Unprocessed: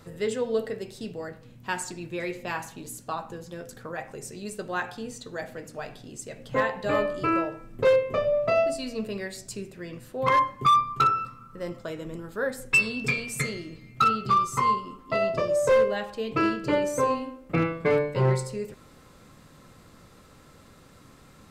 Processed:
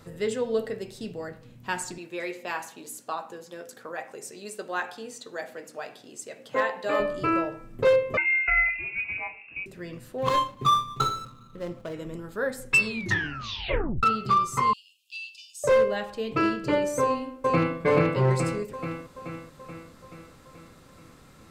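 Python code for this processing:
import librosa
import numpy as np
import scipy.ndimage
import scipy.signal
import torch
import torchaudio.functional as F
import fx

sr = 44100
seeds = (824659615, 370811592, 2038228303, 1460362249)

y = fx.highpass(x, sr, hz=320.0, slope=12, at=(1.98, 7.0))
y = fx.freq_invert(y, sr, carrier_hz=2700, at=(8.17, 9.66))
y = fx.median_filter(y, sr, points=25, at=(10.18, 11.94))
y = fx.brickwall_highpass(y, sr, low_hz=2400.0, at=(14.73, 15.64))
y = fx.echo_throw(y, sr, start_s=17.01, length_s=0.76, ms=430, feedback_pct=60, wet_db=-0.5)
y = fx.edit(y, sr, fx.tape_stop(start_s=12.86, length_s=1.17), tone=tone)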